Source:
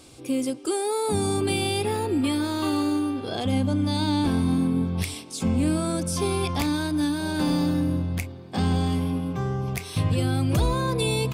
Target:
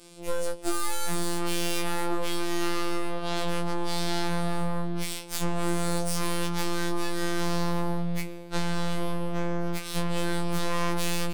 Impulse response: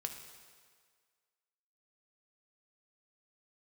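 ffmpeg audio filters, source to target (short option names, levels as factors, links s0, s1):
-filter_complex "[0:a]asplit=2[s0][s1];[1:a]atrim=start_sample=2205[s2];[s1][s2]afir=irnorm=-1:irlink=0,volume=0.422[s3];[s0][s3]amix=inputs=2:normalize=0,aeval=exprs='0.299*(cos(1*acos(clip(val(0)/0.299,-1,1)))-cos(1*PI/2))+0.0211*(cos(2*acos(clip(val(0)/0.299,-1,1)))-cos(2*PI/2))+0.0106*(cos(4*acos(clip(val(0)/0.299,-1,1)))-cos(4*PI/2))+0.00376*(cos(5*acos(clip(val(0)/0.299,-1,1)))-cos(5*PI/2))+0.106*(cos(8*acos(clip(val(0)/0.299,-1,1)))-cos(8*PI/2))':c=same,acompressor=threshold=0.126:ratio=12,afftfilt=real='hypot(re,im)*cos(PI*b)':imag='0':win_size=1024:overlap=0.75,afftfilt=real='re*2.83*eq(mod(b,8),0)':imag='im*2.83*eq(mod(b,8),0)':win_size=2048:overlap=0.75,volume=0.422"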